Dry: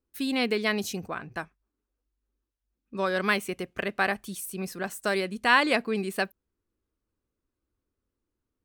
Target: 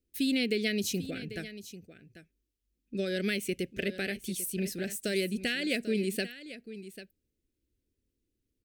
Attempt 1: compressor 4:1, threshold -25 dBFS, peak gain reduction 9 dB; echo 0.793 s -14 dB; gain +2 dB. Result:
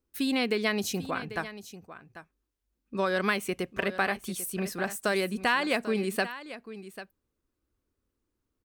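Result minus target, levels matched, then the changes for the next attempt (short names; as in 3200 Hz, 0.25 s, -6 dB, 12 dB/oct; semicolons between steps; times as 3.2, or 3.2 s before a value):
1000 Hz band +18.5 dB
add after compressor: Butterworth band-stop 1000 Hz, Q 0.6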